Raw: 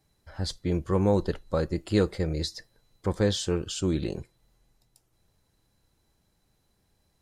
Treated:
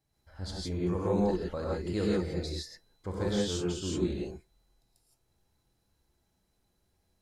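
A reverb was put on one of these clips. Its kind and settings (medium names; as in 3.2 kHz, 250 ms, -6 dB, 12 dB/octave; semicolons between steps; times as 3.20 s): gated-style reverb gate 190 ms rising, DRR -5 dB; trim -10.5 dB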